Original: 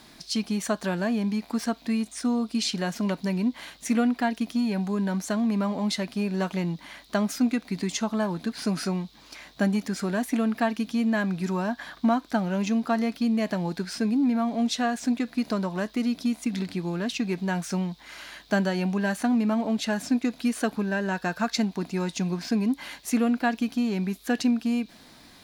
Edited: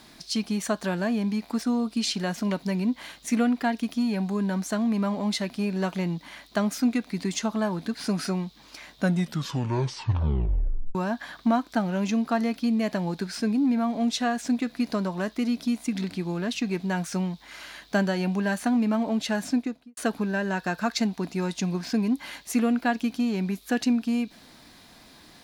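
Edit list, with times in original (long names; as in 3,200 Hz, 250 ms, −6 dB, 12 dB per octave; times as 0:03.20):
0:01.62–0:02.20: remove
0:09.50: tape stop 2.03 s
0:20.05–0:20.55: fade out and dull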